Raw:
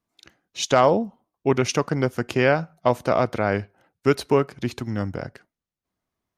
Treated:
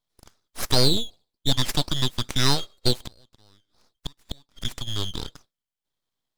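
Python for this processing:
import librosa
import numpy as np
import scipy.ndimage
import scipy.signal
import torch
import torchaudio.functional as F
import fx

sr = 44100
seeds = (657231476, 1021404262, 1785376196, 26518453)

y = fx.band_shuffle(x, sr, order='4123')
y = fx.gate_flip(y, sr, shuts_db=-17.0, range_db=-34, at=(3.06, 4.65))
y = np.abs(y)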